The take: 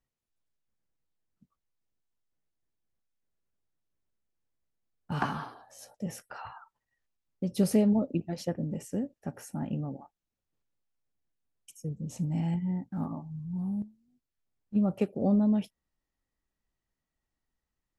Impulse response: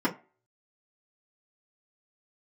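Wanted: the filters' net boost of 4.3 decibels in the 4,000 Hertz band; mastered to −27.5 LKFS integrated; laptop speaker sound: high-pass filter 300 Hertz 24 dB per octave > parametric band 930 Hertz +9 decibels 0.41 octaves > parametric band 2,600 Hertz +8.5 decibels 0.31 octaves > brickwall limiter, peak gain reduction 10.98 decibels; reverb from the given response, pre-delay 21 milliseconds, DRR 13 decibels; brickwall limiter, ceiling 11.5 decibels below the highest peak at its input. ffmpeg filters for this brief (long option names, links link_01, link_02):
-filter_complex "[0:a]equalizer=frequency=4000:width_type=o:gain=3.5,alimiter=level_in=2dB:limit=-24dB:level=0:latency=1,volume=-2dB,asplit=2[link_01][link_02];[1:a]atrim=start_sample=2205,adelay=21[link_03];[link_02][link_03]afir=irnorm=-1:irlink=0,volume=-24dB[link_04];[link_01][link_04]amix=inputs=2:normalize=0,highpass=frequency=300:width=0.5412,highpass=frequency=300:width=1.3066,equalizer=frequency=930:width_type=o:width=0.41:gain=9,equalizer=frequency=2600:width_type=o:width=0.31:gain=8.5,volume=16.5dB,alimiter=limit=-16dB:level=0:latency=1"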